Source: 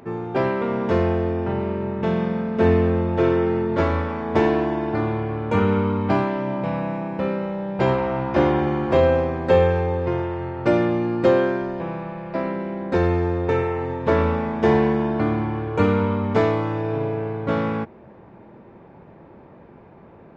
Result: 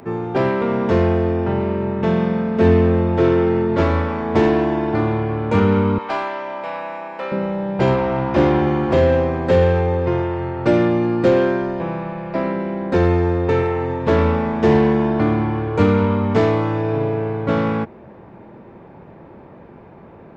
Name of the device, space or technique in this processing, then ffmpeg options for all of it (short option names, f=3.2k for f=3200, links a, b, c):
one-band saturation: -filter_complex "[0:a]asettb=1/sr,asplit=3[a][b][c];[a]atrim=end=5.984[d];[b]atrim=start=5.98:end=7.32,asetpts=PTS-STARTPTS,afade=t=in:d=0.004:c=qsin,afade=t=out:st=1.336:d=0.004:c=qsin,highpass=700[e];[c]atrim=start=7.316[f];[d][e]acrossfade=d=0.004:c1=hsin:c2=qsin[g];[g][f]acrossfade=d=0.004:c1=qsin:c2=hsin,acrossover=split=410|4900[h][i][j];[i]asoftclip=type=tanh:threshold=-20.5dB[k];[h][k][j]amix=inputs=3:normalize=0,volume=4.5dB"